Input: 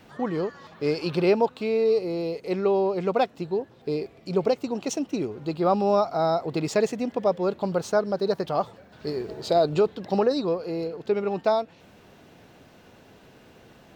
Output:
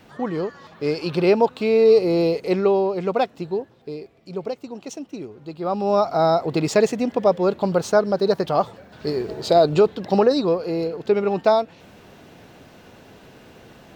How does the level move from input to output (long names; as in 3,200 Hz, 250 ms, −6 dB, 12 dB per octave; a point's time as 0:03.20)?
0:01.04 +2 dB
0:02.23 +10 dB
0:02.89 +2 dB
0:03.55 +2 dB
0:03.96 −5.5 dB
0:05.55 −5.5 dB
0:06.10 +5.5 dB